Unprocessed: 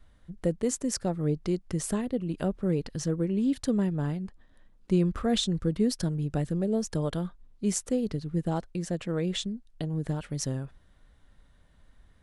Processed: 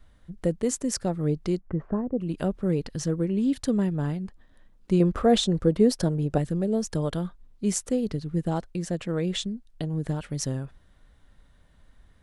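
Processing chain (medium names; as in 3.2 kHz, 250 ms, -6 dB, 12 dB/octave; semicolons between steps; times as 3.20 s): 1.59–2.18 s: low-pass 1.8 kHz -> 1 kHz 24 dB/octave; 5.00–6.38 s: peaking EQ 580 Hz +8.5 dB 1.8 oct; trim +2 dB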